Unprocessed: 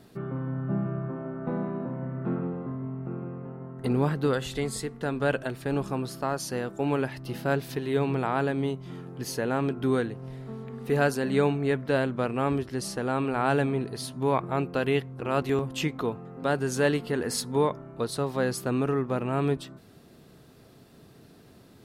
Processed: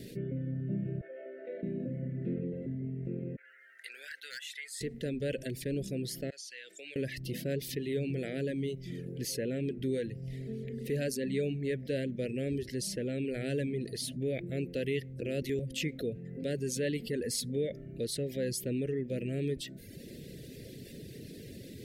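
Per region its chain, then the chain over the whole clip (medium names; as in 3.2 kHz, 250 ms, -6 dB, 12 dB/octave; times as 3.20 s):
1.01–1.63 s: high-pass 530 Hz 24 dB/octave + distance through air 280 m
3.36–4.81 s: ladder high-pass 1.4 kHz, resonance 75% + overload inside the chain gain 32.5 dB
6.30–6.96 s: Bessel high-pass 2.2 kHz + compression 3:1, threshold -49 dBFS + distance through air 72 m
whole clip: Chebyshev band-stop 540–1900 Hz, order 3; reverb removal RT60 0.69 s; level flattener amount 50%; trim -8 dB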